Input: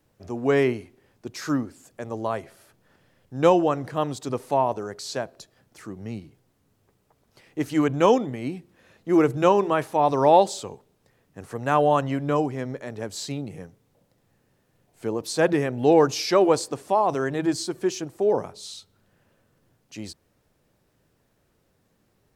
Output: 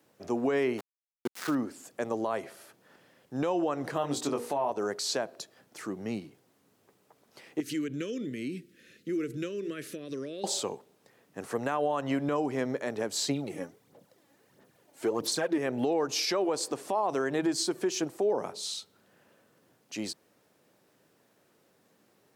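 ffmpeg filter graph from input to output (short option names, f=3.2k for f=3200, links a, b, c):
-filter_complex "[0:a]asettb=1/sr,asplit=3[a][b][c];[a]atrim=end=0.784[d];[b]atrim=start=0.78:end=1.55,asetpts=PTS-STARTPTS,afade=t=in:d=0.004:c=qsin,afade=t=out:st=0.766:d=0.004:c=qsin,equalizer=f=11k:w=0.42:g=-11.5,aeval=exprs='val(0)*gte(abs(val(0)),0.0178)':c=same[e];[c]atrim=start=1.546[f];[d][e]acrossfade=d=0.004:c1=hsin:c2=qsin[g];[g][f]acrossfade=d=0.004:c1=qsin:c2=hsin,asettb=1/sr,asplit=3[h][i][j];[h]atrim=end=3.944[k];[i]atrim=start=3.94:end=4.7,asetpts=PTS-STARTPTS,afade=t=in:d=0.004:c=qsin,afade=t=out:st=0.756:d=0.004:c=qsin,bandreject=f=60:t=h:w=6,bandreject=f=120:t=h:w=6,bandreject=f=180:t=h:w=6,bandreject=f=240:t=h:w=6,bandreject=f=300:t=h:w=6,bandreject=f=360:t=h:w=6,bandreject=f=420:t=h:w=6,bandreject=f=480:t=h:w=6,bandreject=f=540:t=h:w=6,asplit=2[l][m];[m]adelay=21,volume=-5dB[n];[l][n]amix=inputs=2:normalize=0,atrim=end_sample=33516[o];[j]atrim=start=4.696[p];[k][o]acrossfade=d=0.004:c1=hsin:c2=qsin[q];[q][p]acrossfade=d=0.004:c1=qsin:c2=hsin,asettb=1/sr,asplit=3[r][s][t];[r]atrim=end=7.604[u];[s]atrim=start=7.6:end=10.44,asetpts=PTS-STARTPTS,afade=t=in:d=0.004:c=qsin,afade=t=out:st=2.836:d=0.004:c=qsin,acompressor=threshold=-31dB:ratio=4:attack=3.2:release=140:knee=1:detection=peak,asuperstop=centerf=850:order=4:qfactor=0.61[v];[t]atrim=start=10.436[w];[u][v]acrossfade=d=0.004:c1=hsin:c2=qsin[x];[x][w]acrossfade=d=0.004:c1=qsin:c2=hsin,asettb=1/sr,asplit=3[y][z][aa];[y]atrim=end=13.294[ab];[z]atrim=start=13.29:end=15.58,asetpts=PTS-STARTPTS,afade=t=in:d=0.004:c=qsin,afade=t=out:st=2.286:d=0.004:c=qsin,bandreject=f=2.6k:w=24,aphaser=in_gain=1:out_gain=1:delay=3.6:decay=0.59:speed=1.5:type=sinusoidal[ac];[aa]atrim=start=15.576[ad];[ab][ac]acrossfade=d=0.004:c1=hsin:c2=qsin[ae];[ae][ad]acrossfade=d=0.004:c1=qsin:c2=hsin,acompressor=threshold=-23dB:ratio=4,highpass=220,alimiter=limit=-22.5dB:level=0:latency=1:release=128,volume=3dB"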